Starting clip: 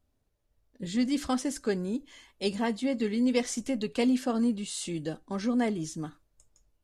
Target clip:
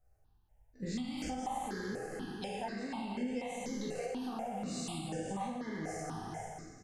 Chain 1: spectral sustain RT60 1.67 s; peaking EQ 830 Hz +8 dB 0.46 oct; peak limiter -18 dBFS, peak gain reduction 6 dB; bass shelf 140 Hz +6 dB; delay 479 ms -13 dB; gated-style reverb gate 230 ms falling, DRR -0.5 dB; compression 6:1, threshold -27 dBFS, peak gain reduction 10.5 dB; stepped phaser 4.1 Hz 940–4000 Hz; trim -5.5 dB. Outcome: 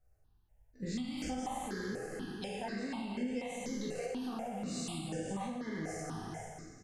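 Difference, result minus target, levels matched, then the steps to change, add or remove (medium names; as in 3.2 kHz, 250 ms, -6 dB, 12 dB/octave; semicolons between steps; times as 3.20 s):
1 kHz band -2.5 dB
change: peaking EQ 830 Hz +14 dB 0.46 oct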